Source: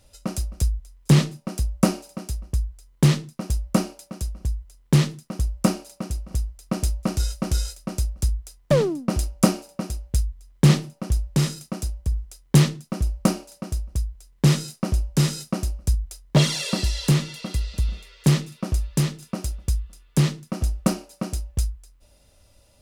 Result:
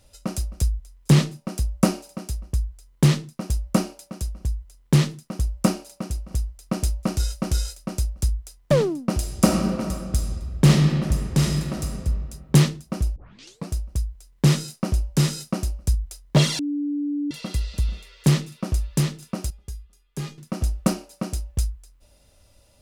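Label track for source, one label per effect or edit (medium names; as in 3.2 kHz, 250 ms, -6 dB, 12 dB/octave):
9.150000	12.010000	reverb throw, RT60 2 s, DRR 2 dB
13.160000	13.160000	tape start 0.53 s
16.590000	17.310000	bleep 290 Hz -22.5 dBFS
19.500000	20.380000	feedback comb 410 Hz, decay 0.18 s, mix 80%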